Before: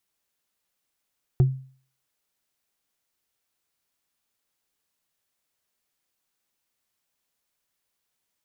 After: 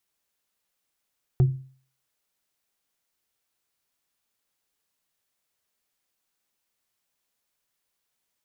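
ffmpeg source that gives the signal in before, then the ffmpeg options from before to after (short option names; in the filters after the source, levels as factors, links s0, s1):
-f lavfi -i "aevalsrc='0.266*pow(10,-3*t/0.45)*sin(2*PI*132*t)+0.075*pow(10,-3*t/0.133)*sin(2*PI*363.9*t)+0.0211*pow(10,-3*t/0.059)*sin(2*PI*713.3*t)+0.00596*pow(10,-3*t/0.033)*sin(2*PI*1179.2*t)+0.00168*pow(10,-3*t/0.02)*sin(2*PI*1760.9*t)':d=0.88:s=44100"
-af "bandreject=f=50:t=h:w=6,bandreject=f=100:t=h:w=6,bandreject=f=150:t=h:w=6,bandreject=f=200:t=h:w=6,bandreject=f=250:t=h:w=6,bandreject=f=300:t=h:w=6,bandreject=f=350:t=h:w=6"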